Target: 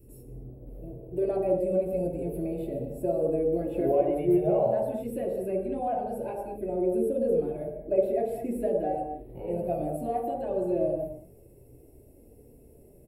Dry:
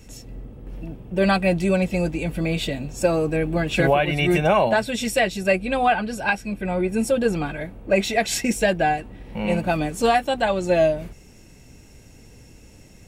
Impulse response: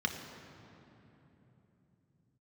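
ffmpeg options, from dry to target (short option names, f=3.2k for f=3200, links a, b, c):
-filter_complex "[0:a]acrossover=split=2600[a][b];[b]acompressor=threshold=-40dB:ratio=4:attack=1:release=60[c];[a][c]amix=inputs=2:normalize=0,firequalizer=gain_entry='entry(100,0);entry(190,-13);entry(470,6);entry(940,-12);entry(1500,-24);entry(6100,-28);entry(11000,9)':delay=0.05:min_phase=1,asplit=2[d][e];[e]acompressor=threshold=-27dB:ratio=6,volume=-3dB[f];[d][f]amix=inputs=2:normalize=0,flanger=delay=0.7:depth=4.3:regen=-48:speed=0.19:shape=sinusoidal[g];[1:a]atrim=start_sample=2205,afade=t=out:st=0.42:d=0.01,atrim=end_sample=18963,asetrate=66150,aresample=44100[h];[g][h]afir=irnorm=-1:irlink=0,volume=-4.5dB"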